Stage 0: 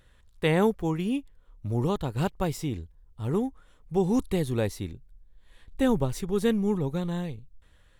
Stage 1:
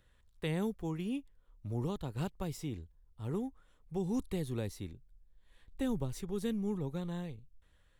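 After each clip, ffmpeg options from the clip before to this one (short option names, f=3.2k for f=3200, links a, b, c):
-filter_complex "[0:a]acrossover=split=320|3000[a][b][c];[b]acompressor=threshold=-31dB:ratio=6[d];[a][d][c]amix=inputs=3:normalize=0,volume=-8.5dB"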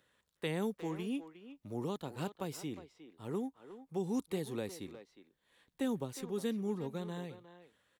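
-filter_complex "[0:a]highpass=210,asplit=2[a][b];[b]adelay=360,highpass=300,lowpass=3.4k,asoftclip=type=hard:threshold=-35dB,volume=-11dB[c];[a][c]amix=inputs=2:normalize=0,volume=1dB"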